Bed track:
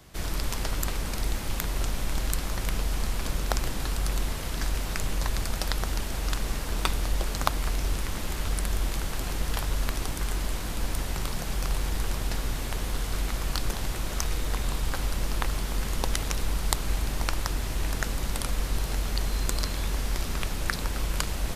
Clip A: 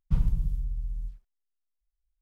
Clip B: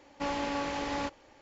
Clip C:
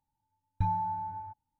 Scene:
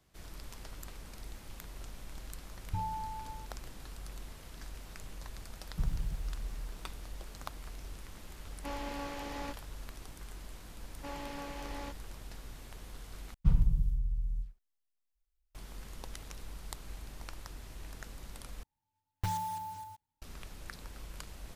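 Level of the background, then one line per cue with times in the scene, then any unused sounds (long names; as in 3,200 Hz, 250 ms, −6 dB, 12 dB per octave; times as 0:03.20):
bed track −17.5 dB
0:02.13: mix in C −7 dB
0:05.67: mix in A −9.5 dB + mu-law and A-law mismatch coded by mu
0:08.44: mix in B −8 dB
0:10.83: mix in B −10.5 dB
0:13.34: overwrite with A −1 dB
0:18.63: overwrite with C −5 dB + one scale factor per block 3 bits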